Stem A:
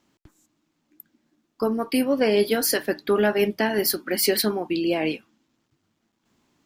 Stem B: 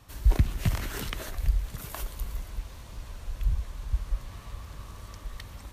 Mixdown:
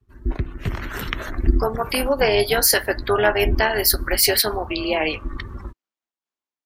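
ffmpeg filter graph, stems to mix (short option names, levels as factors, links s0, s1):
-filter_complex "[0:a]highpass=550,acontrast=25,volume=0.422,asplit=2[s0][s1];[1:a]equalizer=f=1500:t=o:w=1.3:g=6,volume=0.891[s2];[s1]apad=whole_len=252598[s3];[s2][s3]sidechaincompress=threshold=0.0224:ratio=8:attack=16:release=111[s4];[s0][s4]amix=inputs=2:normalize=0,afftdn=nr=24:nf=-44,dynaudnorm=f=260:g=7:m=6.68,tremolo=f=300:d=0.571"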